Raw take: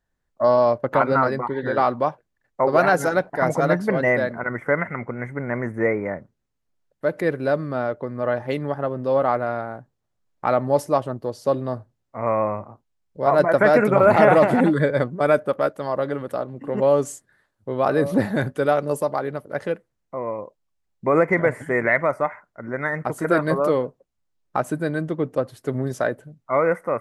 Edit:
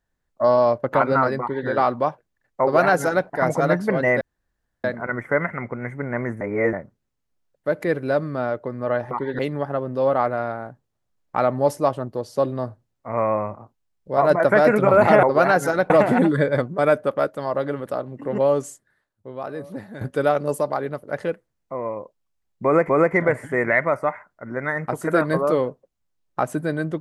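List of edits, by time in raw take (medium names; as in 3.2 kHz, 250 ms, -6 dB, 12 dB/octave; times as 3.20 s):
1.40–1.68 s: copy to 8.48 s
2.61–3.28 s: copy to 14.32 s
4.21 s: insert room tone 0.63 s
5.78–6.10 s: reverse
16.76–18.43 s: fade out quadratic, to -15 dB
21.06–21.31 s: loop, 2 plays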